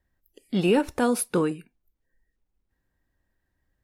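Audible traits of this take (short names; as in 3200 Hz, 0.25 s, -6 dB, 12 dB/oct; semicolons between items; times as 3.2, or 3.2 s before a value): noise floor -78 dBFS; spectral tilt -5.0 dB/oct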